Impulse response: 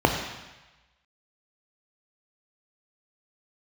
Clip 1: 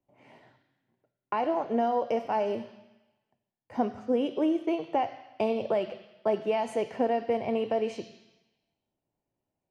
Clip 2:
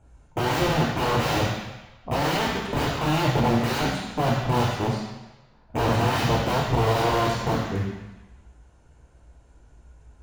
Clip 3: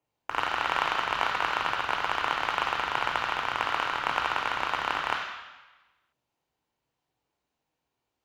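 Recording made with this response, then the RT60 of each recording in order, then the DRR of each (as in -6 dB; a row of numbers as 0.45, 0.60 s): 3; 1.1, 1.1, 1.1 s; 12.5, -1.5, 3.5 dB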